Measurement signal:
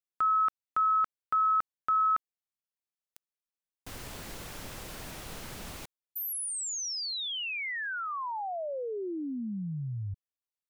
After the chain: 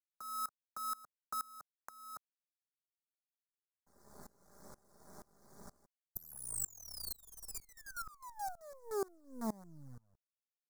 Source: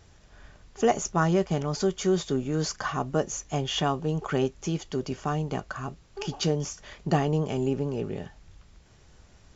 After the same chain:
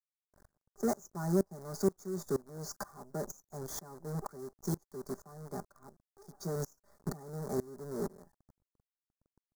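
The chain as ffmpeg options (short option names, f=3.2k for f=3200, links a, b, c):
-filter_complex "[0:a]highpass=f=56:w=0.5412,highpass=f=56:w=1.3066,afftfilt=real='re*gte(hypot(re,im),0.00447)':imag='im*gte(hypot(re,im),0.00447)':win_size=1024:overlap=0.75,equalizer=f=110:t=o:w=1.2:g=-4.5,aecho=1:1:5:0.62,acrossover=split=190|350|1400[a][b][c][d];[c]asoftclip=type=hard:threshold=-30dB[e];[a][b][e][d]amix=inputs=4:normalize=0,acrusher=bits=6:dc=4:mix=0:aa=0.000001,asuperstop=centerf=2800:order=4:qfactor=0.61,aeval=exprs='val(0)*pow(10,-25*if(lt(mod(-2.1*n/s,1),2*abs(-2.1)/1000),1-mod(-2.1*n/s,1)/(2*abs(-2.1)/1000),(mod(-2.1*n/s,1)-2*abs(-2.1)/1000)/(1-2*abs(-2.1)/1000))/20)':c=same,volume=-2.5dB"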